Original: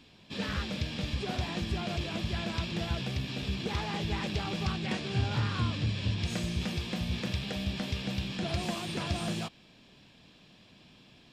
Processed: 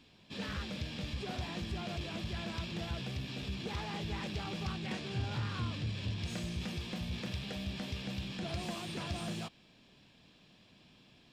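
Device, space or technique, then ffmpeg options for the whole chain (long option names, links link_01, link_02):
parallel distortion: -filter_complex "[0:a]asplit=2[link_01][link_02];[link_02]asoftclip=type=hard:threshold=-33.5dB,volume=-5dB[link_03];[link_01][link_03]amix=inputs=2:normalize=0,volume=-8.5dB"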